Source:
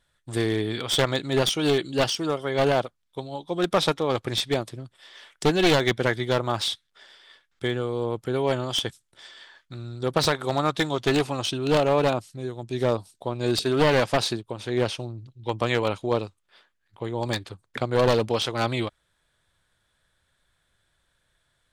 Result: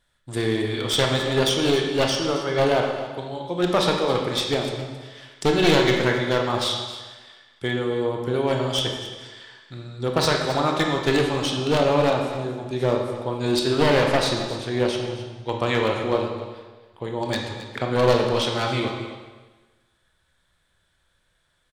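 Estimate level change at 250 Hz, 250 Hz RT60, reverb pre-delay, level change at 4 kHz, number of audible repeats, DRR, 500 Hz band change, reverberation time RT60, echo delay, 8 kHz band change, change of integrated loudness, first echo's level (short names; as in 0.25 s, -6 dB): +2.5 dB, 1.2 s, 20 ms, +2.5 dB, 1, 1.0 dB, +2.5 dB, 1.3 s, 0.269 s, +1.5 dB, +2.0 dB, -14.0 dB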